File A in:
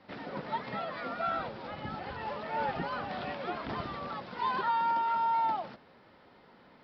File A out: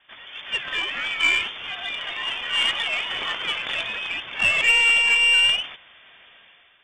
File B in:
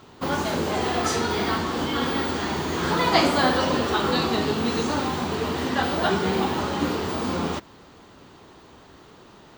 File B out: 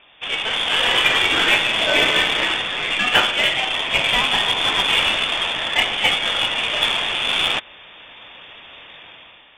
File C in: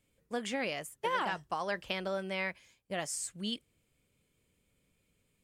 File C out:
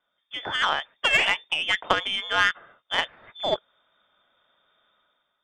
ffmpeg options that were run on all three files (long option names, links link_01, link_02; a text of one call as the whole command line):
ffmpeg -i in.wav -af "crystalizer=i=9.5:c=0,lowpass=frequency=3100:width_type=q:width=0.5098,lowpass=frequency=3100:width_type=q:width=0.6013,lowpass=frequency=3100:width_type=q:width=0.9,lowpass=frequency=3100:width_type=q:width=2.563,afreqshift=-3700,dynaudnorm=framelen=110:gausssize=9:maxgain=10dB,aeval=exprs='0.944*(cos(1*acos(clip(val(0)/0.944,-1,1)))-cos(1*PI/2))+0.0668*(cos(3*acos(clip(val(0)/0.944,-1,1)))-cos(3*PI/2))+0.0422*(cos(5*acos(clip(val(0)/0.944,-1,1)))-cos(5*PI/2))+0.0596*(cos(7*acos(clip(val(0)/0.944,-1,1)))-cos(7*PI/2))+0.00944*(cos(8*acos(clip(val(0)/0.944,-1,1)))-cos(8*PI/2))':channel_layout=same,volume=-1dB" out.wav